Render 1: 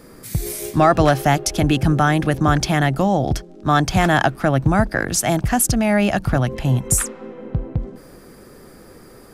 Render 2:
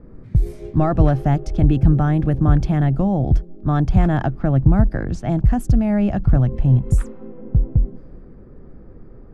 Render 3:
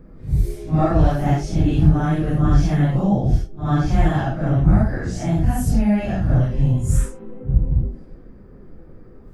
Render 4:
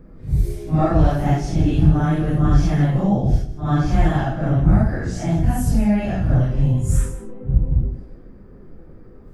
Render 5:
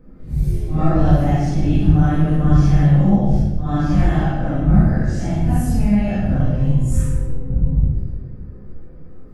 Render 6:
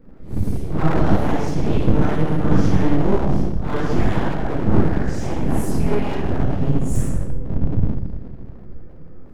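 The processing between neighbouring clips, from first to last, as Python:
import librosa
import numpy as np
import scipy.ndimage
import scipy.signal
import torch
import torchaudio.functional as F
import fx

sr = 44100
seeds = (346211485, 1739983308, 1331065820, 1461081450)

y1 = fx.tilt_eq(x, sr, slope=-4.5)
y1 = fx.env_lowpass(y1, sr, base_hz=2000.0, full_db=-4.0)
y1 = y1 * 10.0 ** (-9.5 / 20.0)
y2 = fx.phase_scramble(y1, sr, seeds[0], window_ms=200)
y2 = fx.high_shelf(y2, sr, hz=3000.0, db=11.0)
y2 = y2 * 10.0 ** (-1.0 / 20.0)
y3 = y2 + 10.0 ** (-14.0 / 20.0) * np.pad(y2, (int(158 * sr / 1000.0), 0))[:len(y2)]
y4 = fx.room_shoebox(y3, sr, seeds[1], volume_m3=410.0, walls='mixed', distance_m=2.0)
y4 = y4 * 10.0 ** (-6.0 / 20.0)
y5 = np.abs(y4)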